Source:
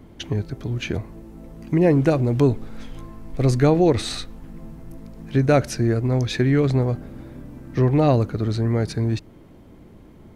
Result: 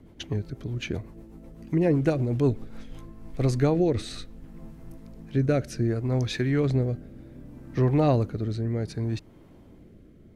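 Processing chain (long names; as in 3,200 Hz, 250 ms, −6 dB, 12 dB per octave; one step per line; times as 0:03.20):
rotating-speaker cabinet horn 8 Hz, later 0.65 Hz, at 0:02.44
level −4 dB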